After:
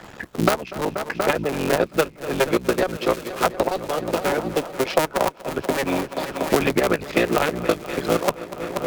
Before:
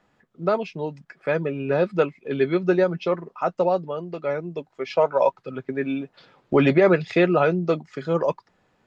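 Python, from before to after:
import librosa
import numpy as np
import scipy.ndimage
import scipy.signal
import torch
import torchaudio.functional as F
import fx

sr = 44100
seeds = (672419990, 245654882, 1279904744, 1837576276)

p1 = fx.cycle_switch(x, sr, every=3, mode='muted')
p2 = fx.high_shelf(p1, sr, hz=4100.0, db=4.0)
p3 = fx.level_steps(p2, sr, step_db=11)
p4 = p2 + F.gain(torch.from_numpy(p3), 2.0).numpy()
p5 = fx.hpss(p4, sr, part='percussive', gain_db=8)
p6 = fx.cheby_harmonics(p5, sr, harmonics=(3,), levels_db=(-14,), full_scale_db=6.5)
p7 = p6 + fx.echo_heads(p6, sr, ms=240, heads='all three', feedback_pct=45, wet_db=-21.0, dry=0)
p8 = fx.band_squash(p7, sr, depth_pct=100)
y = F.gain(torch.from_numpy(p8), -5.0).numpy()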